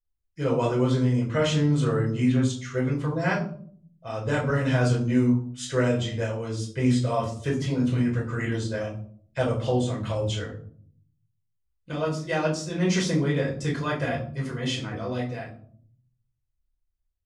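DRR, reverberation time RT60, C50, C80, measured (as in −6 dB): −3.5 dB, 0.55 s, 8.5 dB, 13.0 dB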